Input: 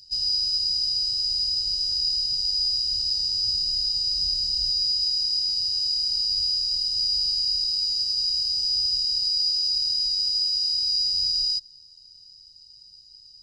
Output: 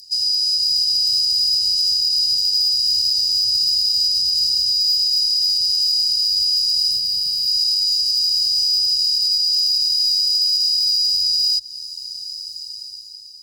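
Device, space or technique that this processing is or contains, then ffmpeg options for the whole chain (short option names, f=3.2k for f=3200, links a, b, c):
FM broadcast chain: -filter_complex "[0:a]highpass=50,dynaudnorm=f=200:g=9:m=12.5dB,acrossover=split=84|3400[a][b][c];[a]acompressor=threshold=-47dB:ratio=4[d];[b]acompressor=threshold=-30dB:ratio=4[e];[c]acompressor=threshold=-26dB:ratio=4[f];[d][e][f]amix=inputs=3:normalize=0,aemphasis=mode=production:type=50fm,alimiter=limit=-13dB:level=0:latency=1:release=117,asoftclip=type=hard:threshold=-14.5dB,lowpass=f=15k:w=0.5412,lowpass=f=15k:w=1.3066,aemphasis=mode=production:type=50fm,asettb=1/sr,asplit=3[g][h][i];[g]atrim=end=6.914[j];[h]atrim=start=6.91:end=7.48,asetpts=PTS-STARTPTS,afade=t=in:d=0.004:c=qsin,afade=t=out:st=0.566:d=0.004:c=qsin,equalizer=f=160:t=o:w=0.67:g=8,equalizer=f=400:t=o:w=0.67:g=9,equalizer=f=1k:t=o:w=0.67:g=-6,equalizer=f=6.3k:t=o:w=0.67:g=-5[k];[i]atrim=start=7.476[l];[j][k]acrossfade=d=0.004:c1=hsin:c2=qsin[m];[m][l]acrossfade=d=0.004:c1=qsin:c2=hsin,volume=-3.5dB"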